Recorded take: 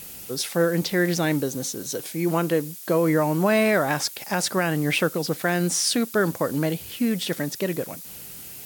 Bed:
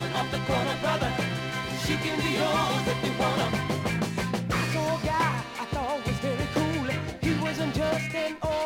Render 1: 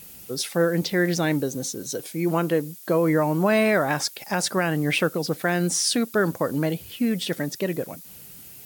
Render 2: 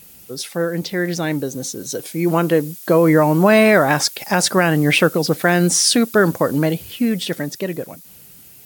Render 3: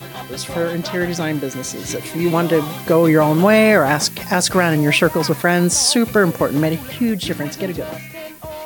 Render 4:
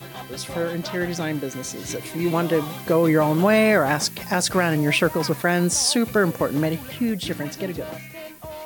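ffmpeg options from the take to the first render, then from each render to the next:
-af "afftdn=nr=6:nf=-40"
-af "dynaudnorm=f=240:g=17:m=10dB"
-filter_complex "[1:a]volume=-3.5dB[a];[0:a][a]amix=inputs=2:normalize=0"
-af "volume=-5dB"

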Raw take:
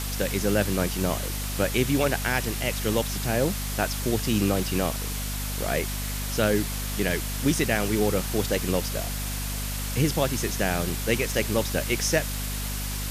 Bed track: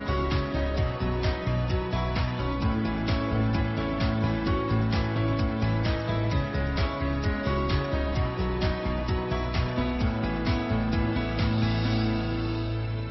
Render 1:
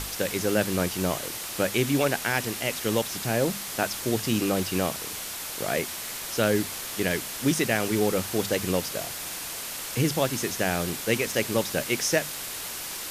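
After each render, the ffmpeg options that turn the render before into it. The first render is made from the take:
-af "bandreject=f=50:t=h:w=6,bandreject=f=100:t=h:w=6,bandreject=f=150:t=h:w=6,bandreject=f=200:t=h:w=6,bandreject=f=250:t=h:w=6"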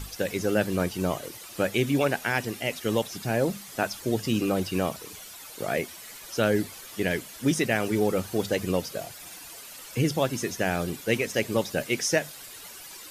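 -af "afftdn=nr=12:nf=-35"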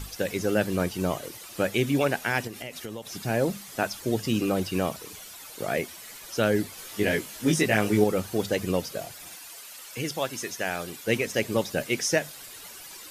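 -filter_complex "[0:a]asettb=1/sr,asplit=3[a][b][c];[a]atrim=end=2.474[d];[b]atrim=start=2.47:end=3.07,asetpts=PTS-STARTPTS,afade=t=in:d=0.004:c=qsin,afade=t=out:st=0.596:d=0.004:c=qsin,acompressor=threshold=-33dB:ratio=6:attack=3.2:release=140:knee=1:detection=peak[e];[c]atrim=start=3.066[f];[d][e]acrossfade=d=0.004:c1=hsin:c2=qsin[g];[g][f]acrossfade=d=0.004:c1=qsin:c2=hsin,asettb=1/sr,asplit=3[h][i][j];[h]atrim=end=6.764[k];[i]atrim=start=6.76:end=8.04,asetpts=PTS-STARTPTS,afade=t=in:d=0.004:c=qsin,afade=t=out:st=1.276:d=0.004:c=qsin,asplit=2[l][m];[m]adelay=19,volume=-2dB[n];[l][n]amix=inputs=2:normalize=0,atrim=end_sample=56448[o];[j]atrim=start=8.036[p];[k][o]acrossfade=d=0.004:c1=hsin:c2=qsin[q];[q][p]acrossfade=d=0.004:c1=qsin:c2=hsin,asettb=1/sr,asplit=3[r][s][t];[r]atrim=end=9.354[u];[s]atrim=start=9.35:end=11.05,asetpts=PTS-STARTPTS,afade=t=in:d=0.004:c=qsin,afade=t=out:st=1.696:d=0.004:c=qsin,lowshelf=f=410:g=-11.5[v];[t]atrim=start=11.046[w];[u][v]acrossfade=d=0.004:c1=hsin:c2=qsin[x];[x][w]acrossfade=d=0.004:c1=qsin:c2=hsin"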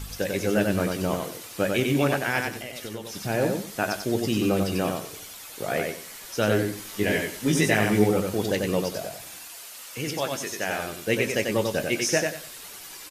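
-filter_complex "[0:a]asplit=2[a][b];[b]adelay=20,volume=-11dB[c];[a][c]amix=inputs=2:normalize=0,aecho=1:1:93|186|279:0.631|0.158|0.0394"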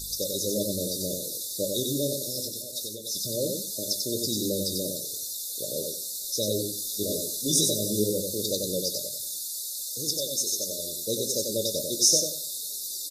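-af "afftfilt=real='re*(1-between(b*sr/4096,630,3500))':imag='im*(1-between(b*sr/4096,630,3500))':win_size=4096:overlap=0.75,tiltshelf=f=900:g=-8.5"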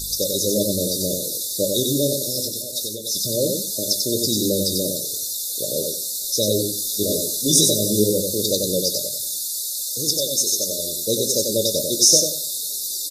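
-af "volume=7.5dB,alimiter=limit=-2dB:level=0:latency=1"

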